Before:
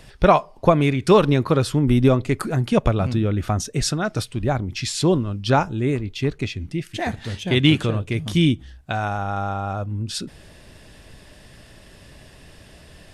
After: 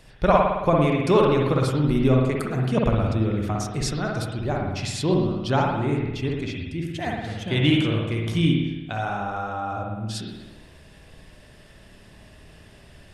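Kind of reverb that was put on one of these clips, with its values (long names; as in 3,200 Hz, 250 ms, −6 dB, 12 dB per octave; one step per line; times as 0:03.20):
spring reverb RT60 1.1 s, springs 54 ms, chirp 70 ms, DRR −1 dB
level −6 dB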